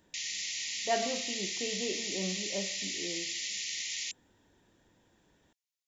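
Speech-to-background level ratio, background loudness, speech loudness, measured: -4.0 dB, -34.0 LUFS, -38.0 LUFS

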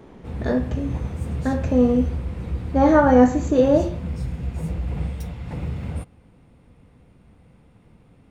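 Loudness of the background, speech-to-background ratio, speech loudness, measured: -29.5 LUFS, 10.5 dB, -19.0 LUFS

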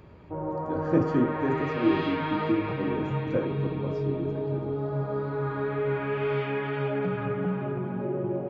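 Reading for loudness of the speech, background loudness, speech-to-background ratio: -30.0 LUFS, -30.5 LUFS, 0.5 dB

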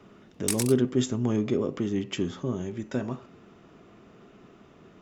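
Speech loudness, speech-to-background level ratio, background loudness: -28.5 LUFS, 3.5 dB, -32.0 LUFS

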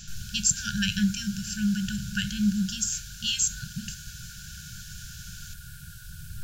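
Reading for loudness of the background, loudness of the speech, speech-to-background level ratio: -44.5 LUFS, -27.5 LUFS, 17.0 dB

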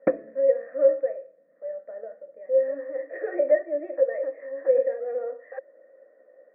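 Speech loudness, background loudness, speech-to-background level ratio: -25.5 LUFS, -30.5 LUFS, 5.0 dB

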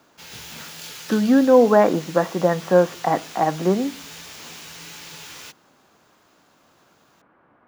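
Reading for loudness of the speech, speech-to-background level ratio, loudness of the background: -19.0 LUFS, 18.0 dB, -37.0 LUFS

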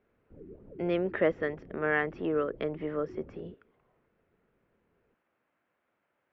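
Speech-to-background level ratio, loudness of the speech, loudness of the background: 18.5 dB, -31.5 LUFS, -50.0 LUFS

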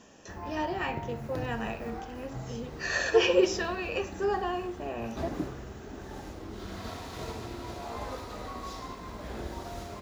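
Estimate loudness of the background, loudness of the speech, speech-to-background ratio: -40.5 LUFS, -30.5 LUFS, 10.0 dB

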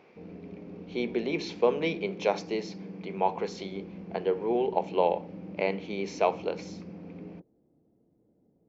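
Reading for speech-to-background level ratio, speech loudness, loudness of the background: 13.5 dB, -30.5 LUFS, -44.0 LUFS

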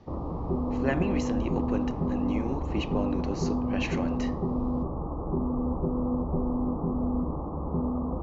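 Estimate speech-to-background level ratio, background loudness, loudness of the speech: -4.0 dB, -30.0 LUFS, -34.0 LUFS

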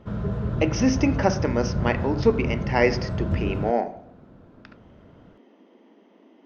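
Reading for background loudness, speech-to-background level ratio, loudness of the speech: -28.5 LUFS, 4.0 dB, -24.5 LUFS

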